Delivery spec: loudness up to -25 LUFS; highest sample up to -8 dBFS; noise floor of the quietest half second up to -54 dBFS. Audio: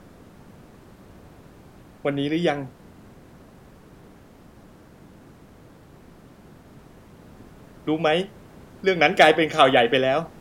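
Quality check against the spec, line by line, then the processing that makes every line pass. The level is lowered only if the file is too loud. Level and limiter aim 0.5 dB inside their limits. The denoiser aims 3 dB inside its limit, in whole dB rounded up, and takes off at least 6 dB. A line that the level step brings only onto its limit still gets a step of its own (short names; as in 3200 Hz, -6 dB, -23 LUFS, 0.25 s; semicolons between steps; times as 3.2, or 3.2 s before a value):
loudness -20.5 LUFS: fail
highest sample -3.0 dBFS: fail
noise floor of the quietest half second -49 dBFS: fail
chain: denoiser 6 dB, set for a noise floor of -49 dBFS; gain -5 dB; limiter -8.5 dBFS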